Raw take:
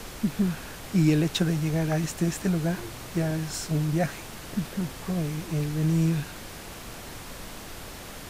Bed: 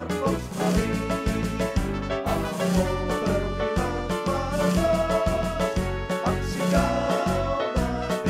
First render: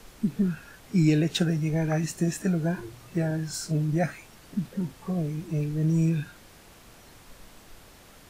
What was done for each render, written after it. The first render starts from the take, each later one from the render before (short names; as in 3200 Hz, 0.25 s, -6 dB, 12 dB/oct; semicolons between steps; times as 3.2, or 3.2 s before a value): noise print and reduce 11 dB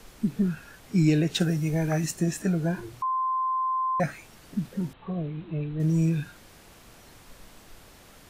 1.4–2.11 high shelf 7200 Hz +8.5 dB; 3.02–4 bleep 1040 Hz -23.5 dBFS; 4.93–5.8 rippled Chebyshev low-pass 4000 Hz, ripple 3 dB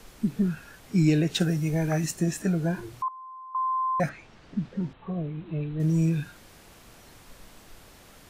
3.08–3.55 band-pass 420 Hz, Q 3; 4.09–5.46 air absorption 140 m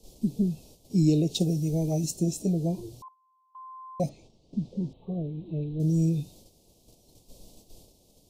Chebyshev band-stop 570–4300 Hz, order 2; gate -51 dBFS, range -8 dB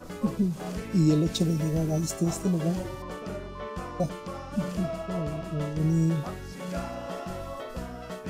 add bed -12 dB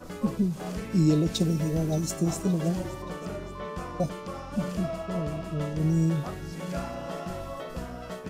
feedback echo 0.573 s, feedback 52%, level -18 dB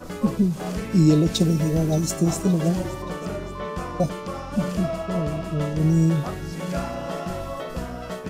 gain +5.5 dB